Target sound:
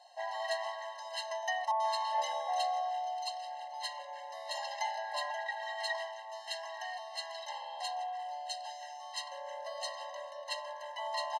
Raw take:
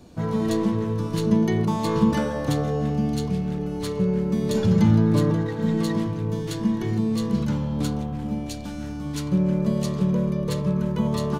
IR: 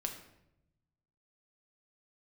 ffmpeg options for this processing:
-filter_complex "[0:a]lowpass=6.3k,aecho=1:1:2.6:0.75,asettb=1/sr,asplit=3[a][b][c];[a]atrim=end=1.714[d];[b]atrim=start=1.71:end=3.74,asetpts=PTS-STARTPTS,afade=t=in:d=0.004:c=qsin,afade=t=out:st=2.026:d=0.004:c=qsin,acrossover=split=1700[e][f];[f]adelay=90[g];[e][g]amix=inputs=2:normalize=0,atrim=end_sample=89523[h];[c]atrim=start=3.736[i];[d][h]acrossfade=d=0.004:c1=hsin:c2=qsin[j];[j][i]acrossfade=d=0.004:c1=qsin:c2=hsin,afftfilt=real='re*eq(mod(floor(b*sr/1024/540),2),1)':imag='im*eq(mod(floor(b*sr/1024/540),2),1)':win_size=1024:overlap=0.75"

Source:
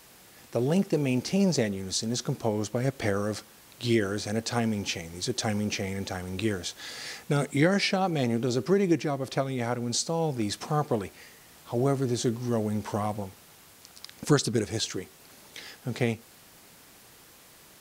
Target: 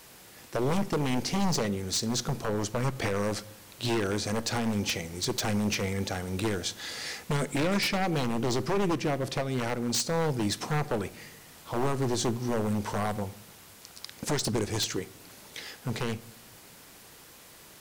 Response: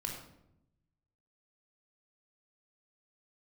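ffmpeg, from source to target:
-filter_complex "[0:a]alimiter=limit=-16dB:level=0:latency=1:release=131,aeval=exprs='0.0668*(abs(mod(val(0)/0.0668+3,4)-2)-1)':c=same,asplit=2[a][b];[1:a]atrim=start_sample=2205[c];[b][c]afir=irnorm=-1:irlink=0,volume=-15dB[d];[a][d]amix=inputs=2:normalize=0,volume=1dB"

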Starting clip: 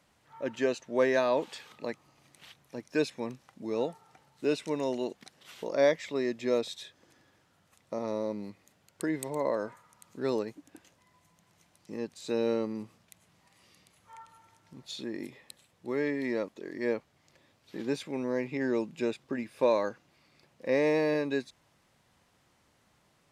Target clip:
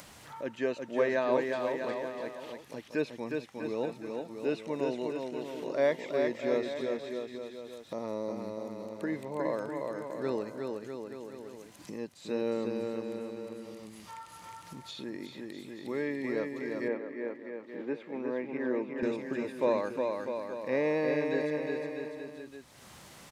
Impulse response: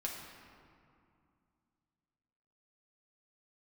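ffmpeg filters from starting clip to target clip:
-filter_complex "[0:a]highshelf=f=4.2k:g=6,acrossover=split=3100[a][b];[b]acompressor=threshold=-55dB:ratio=4:attack=1:release=60[c];[a][c]amix=inputs=2:normalize=0,aecho=1:1:360|648|878.4|1063|1210:0.631|0.398|0.251|0.158|0.1,acompressor=mode=upward:threshold=-34dB:ratio=2.5,asettb=1/sr,asplit=3[d][e][f];[d]atrim=end=16.884[g];[e]atrim=start=16.88:end=19.03,asetpts=PTS-STARTPTS,afade=t=in:d=0.004:c=qsin,afade=t=out:st=2.146:d=0.004:c=qsin,acrossover=split=170 2700:gain=0.0708 1 0.112[h][i][j];[h][i][j]amix=inputs=3:normalize=0[k];[f]atrim=start=19.026[l];[g][k]acrossfade=d=0.004:c1=hsin:c2=qsin[m];[m][l]acrossfade=d=0.004:c1=qsin:c2=hsin,volume=-3dB"

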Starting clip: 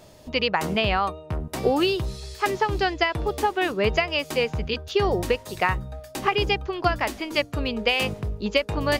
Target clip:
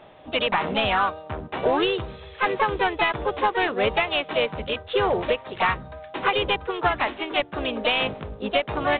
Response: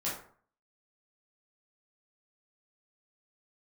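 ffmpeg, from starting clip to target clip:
-filter_complex "[0:a]asplit=2[a][b];[b]asetrate=55563,aresample=44100,atempo=0.793701,volume=-5dB[c];[a][c]amix=inputs=2:normalize=0,asplit=2[d][e];[e]highpass=f=720:p=1,volume=14dB,asoftclip=type=tanh:threshold=-6dB[f];[d][f]amix=inputs=2:normalize=0,lowpass=f=2.8k:p=1,volume=-6dB,volume=-4dB" -ar 8000 -c:a adpcm_ima_wav

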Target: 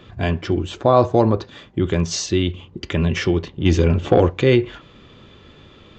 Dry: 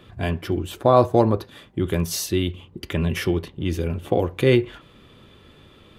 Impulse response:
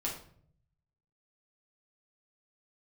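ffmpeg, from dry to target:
-filter_complex "[0:a]asplit=2[a][b];[b]alimiter=limit=-12.5dB:level=0:latency=1,volume=-2.5dB[c];[a][c]amix=inputs=2:normalize=0,asplit=3[d][e][f];[d]afade=t=out:st=3.64:d=0.02[g];[e]acontrast=52,afade=t=in:st=3.64:d=0.02,afade=t=out:st=4.29:d=0.02[h];[f]afade=t=in:st=4.29:d=0.02[i];[g][h][i]amix=inputs=3:normalize=0,aresample=16000,aresample=44100,volume=-1dB"

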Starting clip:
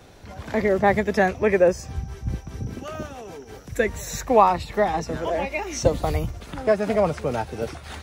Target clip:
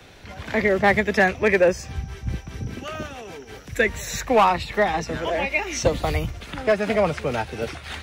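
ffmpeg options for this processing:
-filter_complex "[0:a]acrossover=split=180|1200|3100[a][b][c][d];[c]crystalizer=i=8.5:c=0[e];[a][b][e][d]amix=inputs=4:normalize=0,asoftclip=type=hard:threshold=-9.5dB"

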